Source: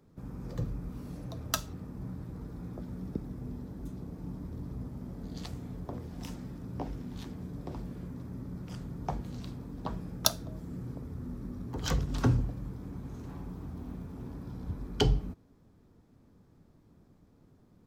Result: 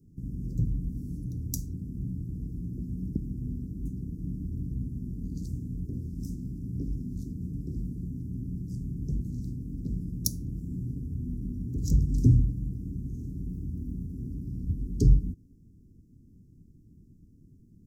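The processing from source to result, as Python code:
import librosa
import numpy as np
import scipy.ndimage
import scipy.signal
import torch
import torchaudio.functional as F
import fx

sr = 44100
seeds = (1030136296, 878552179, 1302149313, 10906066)

y = scipy.signal.sosfilt(scipy.signal.cheby2(4, 50, [730.0, 2900.0], 'bandstop', fs=sr, output='sos'), x)
y = fx.low_shelf(y, sr, hz=230.0, db=8.5)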